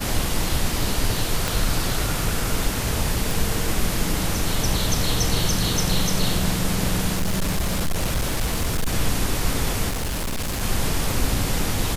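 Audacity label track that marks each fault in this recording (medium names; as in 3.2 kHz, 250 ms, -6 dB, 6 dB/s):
1.480000	1.480000	pop
3.310000	3.310000	pop
7.130000	8.940000	clipped -18 dBFS
9.890000	10.630000	clipped -22.5 dBFS
11.110000	11.110000	pop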